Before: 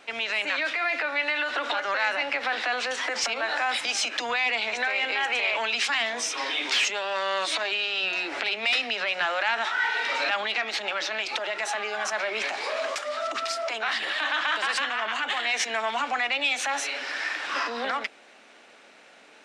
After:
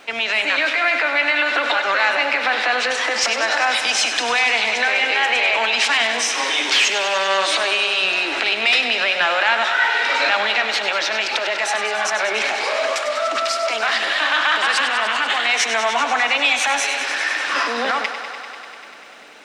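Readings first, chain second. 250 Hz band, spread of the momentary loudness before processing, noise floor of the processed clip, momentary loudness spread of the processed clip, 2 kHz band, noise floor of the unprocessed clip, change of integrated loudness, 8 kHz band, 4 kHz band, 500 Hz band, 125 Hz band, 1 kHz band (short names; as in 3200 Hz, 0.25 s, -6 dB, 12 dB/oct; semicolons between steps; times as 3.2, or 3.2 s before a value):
+8.0 dB, 5 LU, -35 dBFS, 5 LU, +8.5 dB, -53 dBFS, +8.5 dB, +8.5 dB, +8.5 dB, +8.5 dB, n/a, +8.5 dB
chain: crackle 450/s -58 dBFS; thinning echo 98 ms, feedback 83%, high-pass 220 Hz, level -10 dB; gain +7.5 dB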